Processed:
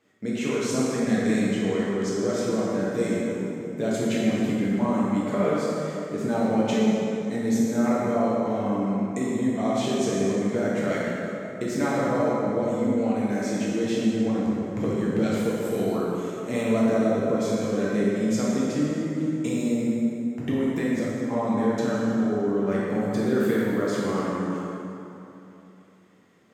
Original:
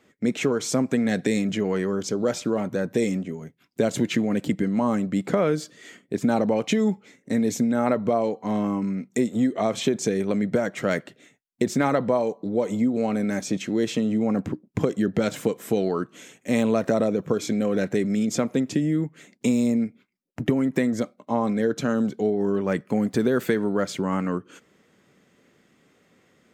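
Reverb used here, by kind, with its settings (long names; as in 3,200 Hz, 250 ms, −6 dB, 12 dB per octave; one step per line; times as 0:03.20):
dense smooth reverb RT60 3.1 s, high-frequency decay 0.6×, DRR −7 dB
level −8.5 dB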